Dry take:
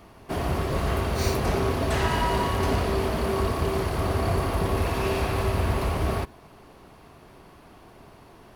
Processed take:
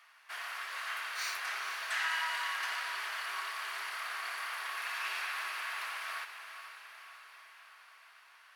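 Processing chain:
four-pole ladder high-pass 1,300 Hz, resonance 40%
high-shelf EQ 9,800 Hz −5.5 dB
on a send: feedback delay with all-pass diffusion 476 ms, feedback 60%, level −10 dB
on the sum: level +3 dB

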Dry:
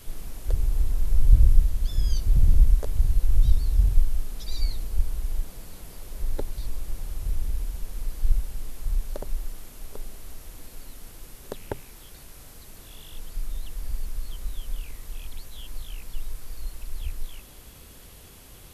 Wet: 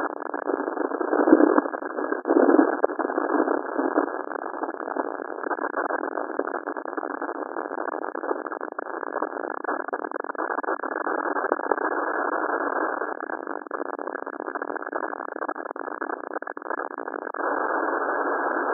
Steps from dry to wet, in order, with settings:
spike at every zero crossing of −17 dBFS
harmonic generator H 3 −14 dB, 7 −25 dB, 8 −37 dB, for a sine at −3 dBFS
linear-phase brick-wall band-pass 270–1,700 Hz
boost into a limiter +33.5 dB
level −1 dB

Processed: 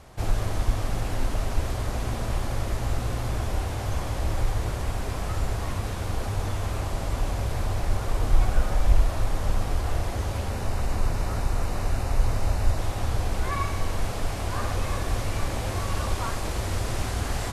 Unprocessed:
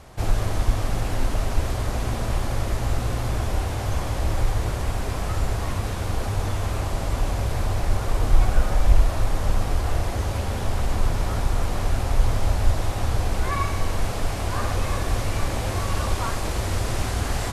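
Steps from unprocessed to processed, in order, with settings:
0:10.49–0:12.79: notch filter 3,300 Hz, Q 7.9
level −3 dB

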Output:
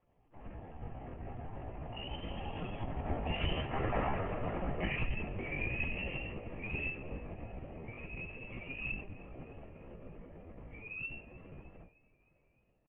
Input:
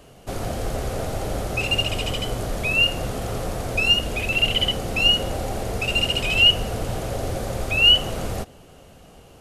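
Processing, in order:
source passing by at 0:02.93, 32 m/s, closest 4.4 metres
dynamic equaliser 750 Hz, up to +3 dB, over −46 dBFS, Q 1.2
harmonic generator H 2 −45 dB, 3 −8 dB, 4 −27 dB, 8 −35 dB, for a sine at −16.5 dBFS
convolution reverb, pre-delay 5 ms, DRR −8 dB
downward compressor 5 to 1, threshold −38 dBFS, peak gain reduction 15.5 dB
linear-prediction vocoder at 8 kHz whisper
Chebyshev low-pass filter 2,800 Hz, order 5
notch filter 1,500 Hz, Q 6.8
tempo change 0.73×
echo with shifted repeats 307 ms, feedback 60%, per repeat −37 Hz, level −22 dB
level +7 dB

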